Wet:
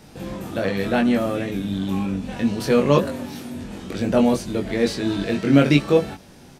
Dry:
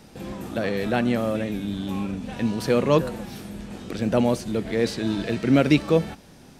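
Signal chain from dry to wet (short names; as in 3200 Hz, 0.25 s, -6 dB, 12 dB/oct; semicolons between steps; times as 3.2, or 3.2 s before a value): 2.97–3.64 frequency shift +39 Hz; doubler 21 ms -3 dB; gain +1 dB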